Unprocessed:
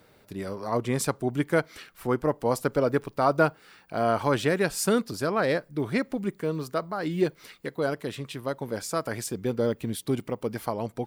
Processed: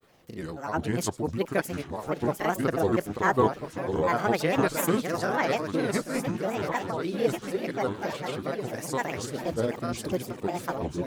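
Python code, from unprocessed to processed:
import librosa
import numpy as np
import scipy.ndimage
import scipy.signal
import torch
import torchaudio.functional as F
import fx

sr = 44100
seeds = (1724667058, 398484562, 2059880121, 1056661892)

y = fx.reverse_delay_fb(x, sr, ms=673, feedback_pct=65, wet_db=-6)
y = fx.echo_wet_highpass(y, sr, ms=133, feedback_pct=37, hz=2800.0, wet_db=-19)
y = fx.granulator(y, sr, seeds[0], grain_ms=100.0, per_s=20.0, spray_ms=29.0, spread_st=7)
y = F.gain(torch.from_numpy(y), -1.0).numpy()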